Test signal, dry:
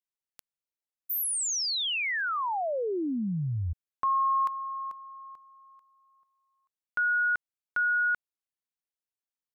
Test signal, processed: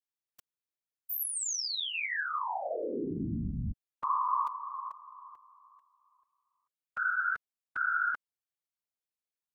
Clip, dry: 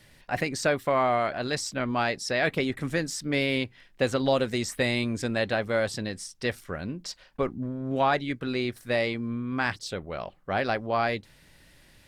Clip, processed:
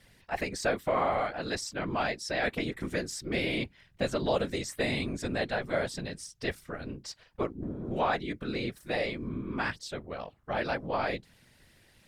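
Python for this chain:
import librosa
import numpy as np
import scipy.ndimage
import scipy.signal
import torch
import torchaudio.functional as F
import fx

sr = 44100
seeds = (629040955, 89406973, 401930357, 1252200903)

y = fx.whisperise(x, sr, seeds[0])
y = y * 10.0 ** (-4.5 / 20.0)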